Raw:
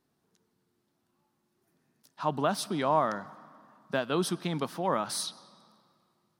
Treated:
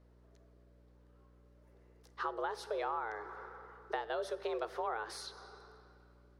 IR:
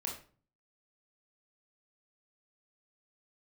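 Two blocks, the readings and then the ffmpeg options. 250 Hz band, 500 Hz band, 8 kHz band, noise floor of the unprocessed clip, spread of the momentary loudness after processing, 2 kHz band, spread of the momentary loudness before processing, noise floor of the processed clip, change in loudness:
-17.0 dB, -7.5 dB, -16.0 dB, -77 dBFS, 16 LU, -4.5 dB, 7 LU, -63 dBFS, -9.0 dB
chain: -filter_complex "[0:a]afreqshift=220,acompressor=threshold=-39dB:ratio=6,aemphasis=mode=reproduction:type=75kf,aeval=exprs='val(0)+0.000447*(sin(2*PI*60*n/s)+sin(2*PI*2*60*n/s)/2+sin(2*PI*3*60*n/s)/3+sin(2*PI*4*60*n/s)/4+sin(2*PI*5*60*n/s)/5)':c=same,asplit=2[a][b];[1:a]atrim=start_sample=2205,asetrate=26901,aresample=44100[c];[b][c]afir=irnorm=-1:irlink=0,volume=-18dB[d];[a][d]amix=inputs=2:normalize=0,volume=3.5dB"

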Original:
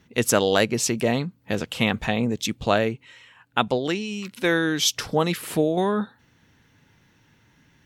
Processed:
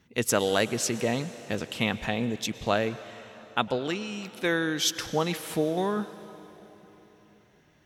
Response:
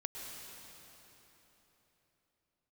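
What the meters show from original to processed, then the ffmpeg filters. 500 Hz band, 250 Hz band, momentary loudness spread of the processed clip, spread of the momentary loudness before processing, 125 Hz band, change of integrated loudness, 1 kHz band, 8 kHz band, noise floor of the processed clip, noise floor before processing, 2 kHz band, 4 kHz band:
-5.0 dB, -5.0 dB, 13 LU, 8 LU, -5.5 dB, -4.5 dB, -4.5 dB, -4.5 dB, -61 dBFS, -61 dBFS, -4.5 dB, -4.5 dB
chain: -filter_complex "[0:a]asplit=2[a][b];[1:a]atrim=start_sample=2205,lowshelf=f=290:g=-8.5[c];[b][c]afir=irnorm=-1:irlink=0,volume=-8dB[d];[a][d]amix=inputs=2:normalize=0,volume=-6.5dB"

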